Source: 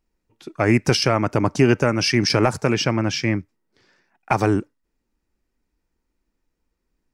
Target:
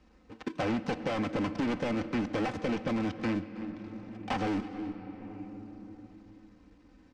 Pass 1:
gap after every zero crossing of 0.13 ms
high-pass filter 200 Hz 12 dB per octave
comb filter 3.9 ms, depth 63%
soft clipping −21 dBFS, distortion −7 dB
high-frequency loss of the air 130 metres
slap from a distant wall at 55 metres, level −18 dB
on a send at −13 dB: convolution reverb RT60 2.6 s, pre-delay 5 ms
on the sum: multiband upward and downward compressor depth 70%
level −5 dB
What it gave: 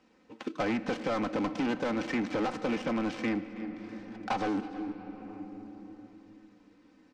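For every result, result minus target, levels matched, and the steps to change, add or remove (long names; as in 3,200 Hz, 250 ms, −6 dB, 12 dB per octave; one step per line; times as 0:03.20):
125 Hz band −5.5 dB; gap after every zero crossing: distortion −6 dB
change: high-pass filter 52 Hz 12 dB per octave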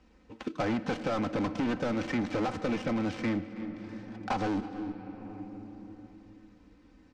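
gap after every zero crossing: distortion −6 dB
change: gap after every zero crossing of 0.34 ms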